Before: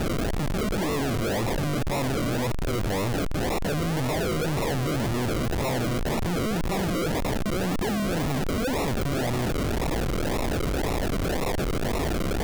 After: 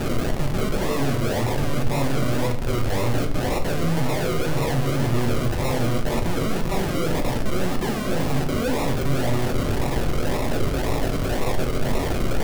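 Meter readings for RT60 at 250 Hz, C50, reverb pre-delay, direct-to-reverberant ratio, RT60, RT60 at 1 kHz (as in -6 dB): 0.70 s, 10.5 dB, 7 ms, 2.5 dB, 0.55 s, 0.50 s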